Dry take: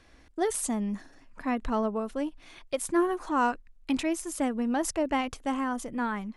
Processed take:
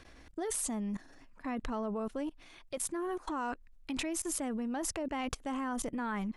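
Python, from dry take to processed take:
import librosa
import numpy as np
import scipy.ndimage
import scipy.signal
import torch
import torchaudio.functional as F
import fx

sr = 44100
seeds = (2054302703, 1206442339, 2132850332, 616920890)

y = fx.level_steps(x, sr, step_db=20)
y = y * librosa.db_to_amplitude(5.0)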